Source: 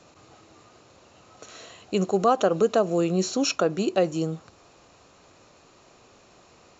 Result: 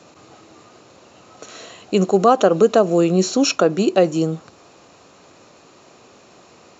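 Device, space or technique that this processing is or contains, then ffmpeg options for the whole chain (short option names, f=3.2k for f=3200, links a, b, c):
filter by subtraction: -filter_complex "[0:a]asplit=2[a][b];[b]lowpass=220,volume=-1[c];[a][c]amix=inputs=2:normalize=0,volume=6dB"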